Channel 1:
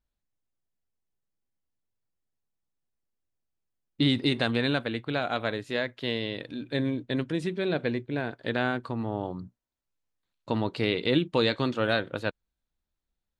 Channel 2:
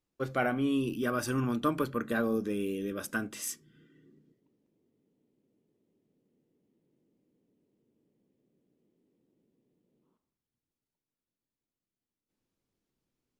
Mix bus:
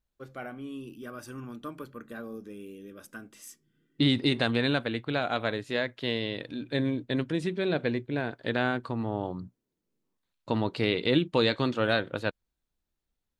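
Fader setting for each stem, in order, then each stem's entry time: 0.0 dB, -10.5 dB; 0.00 s, 0.00 s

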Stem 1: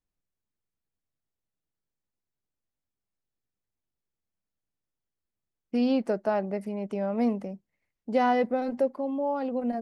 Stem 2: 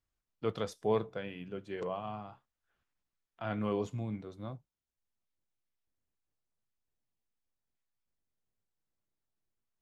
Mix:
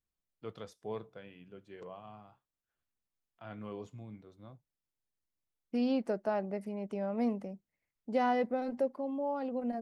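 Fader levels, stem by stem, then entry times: -6.0 dB, -10.0 dB; 0.00 s, 0.00 s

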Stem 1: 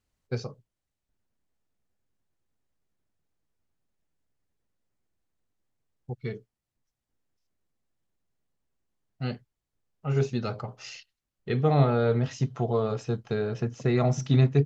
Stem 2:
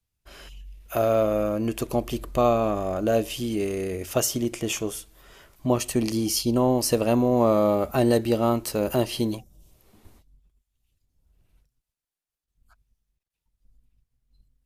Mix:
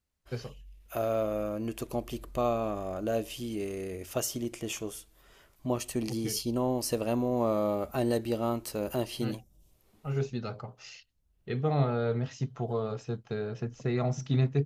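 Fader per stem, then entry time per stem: -5.5 dB, -8.0 dB; 0.00 s, 0.00 s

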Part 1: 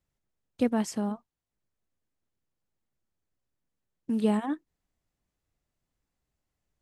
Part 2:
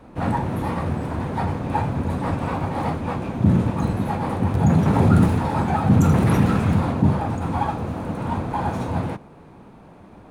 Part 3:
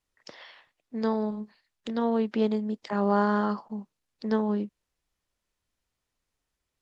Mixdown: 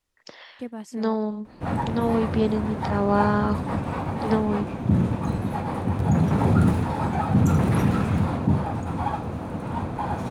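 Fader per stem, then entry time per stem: -9.0 dB, -3.5 dB, +2.5 dB; 0.00 s, 1.45 s, 0.00 s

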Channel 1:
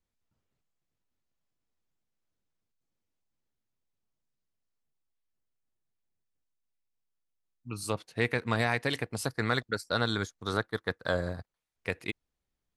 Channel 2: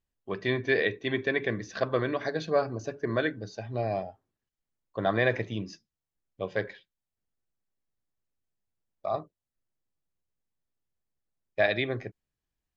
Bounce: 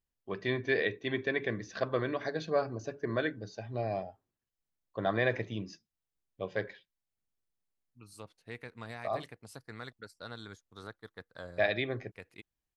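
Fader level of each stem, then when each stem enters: -16.0 dB, -4.0 dB; 0.30 s, 0.00 s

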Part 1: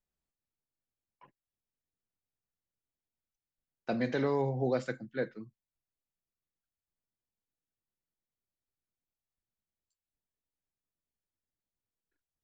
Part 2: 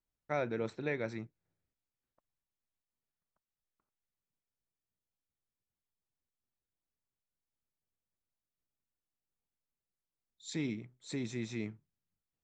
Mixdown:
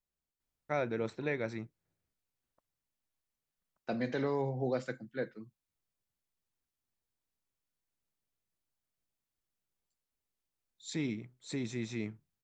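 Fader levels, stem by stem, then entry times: -3.0 dB, +1.0 dB; 0.00 s, 0.40 s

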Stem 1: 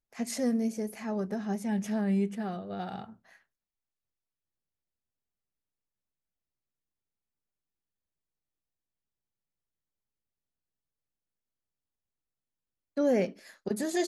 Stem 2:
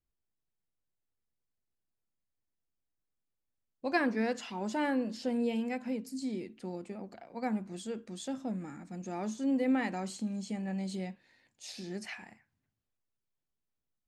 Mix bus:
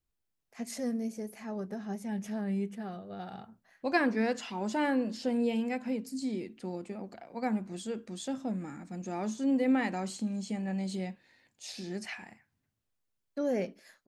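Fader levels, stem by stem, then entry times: -5.0 dB, +2.0 dB; 0.40 s, 0.00 s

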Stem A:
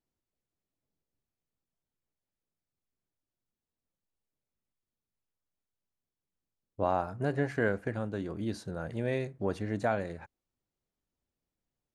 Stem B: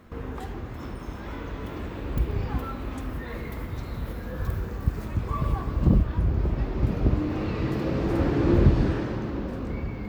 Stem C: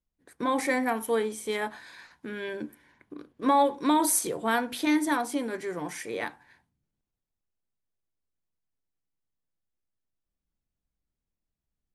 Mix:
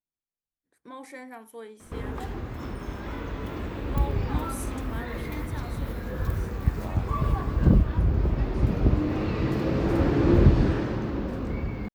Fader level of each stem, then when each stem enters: -13.0 dB, +1.0 dB, -15.5 dB; 0.00 s, 1.80 s, 0.45 s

